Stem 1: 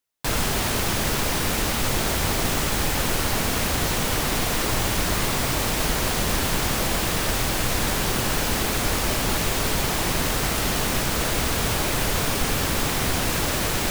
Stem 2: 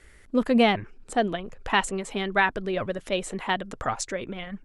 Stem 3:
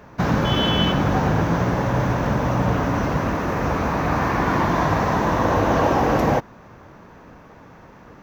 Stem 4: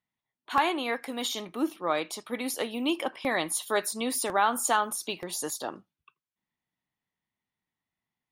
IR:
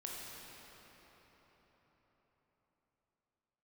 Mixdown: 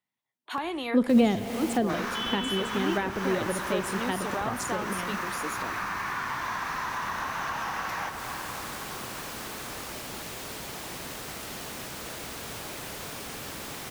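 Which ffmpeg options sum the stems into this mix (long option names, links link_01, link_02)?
-filter_complex "[0:a]adelay=850,volume=-13.5dB[link_01];[1:a]adelay=600,volume=2dB,asplit=2[link_02][link_03];[link_03]volume=-8.5dB[link_04];[2:a]highpass=frequency=1100:width=0.5412,highpass=frequency=1100:width=1.3066,adelay=1700,volume=2dB,asplit=2[link_05][link_06];[link_06]volume=-5dB[link_07];[3:a]volume=0.5dB[link_08];[4:a]atrim=start_sample=2205[link_09];[link_04][link_07]amix=inputs=2:normalize=0[link_10];[link_10][link_09]afir=irnorm=-1:irlink=0[link_11];[link_01][link_02][link_05][link_08][link_11]amix=inputs=5:normalize=0,highpass=frequency=170:poles=1,acrossover=split=410[link_12][link_13];[link_13]acompressor=threshold=-31dB:ratio=5[link_14];[link_12][link_14]amix=inputs=2:normalize=0"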